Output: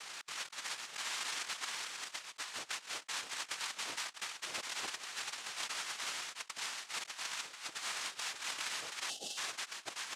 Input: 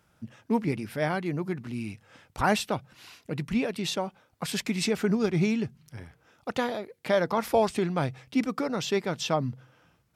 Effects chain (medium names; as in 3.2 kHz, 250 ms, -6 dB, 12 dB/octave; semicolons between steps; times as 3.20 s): four frequency bands reordered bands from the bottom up 4123; feedback delay 656 ms, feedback 15%, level -6 dB; inverted gate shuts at -27 dBFS, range -30 dB; noise-vocoded speech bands 2; tone controls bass -9 dB, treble -5 dB; compressor with a negative ratio -59 dBFS, ratio -0.5; time-frequency box 9.10–9.37 s, 850–2600 Hz -20 dB; trim +17 dB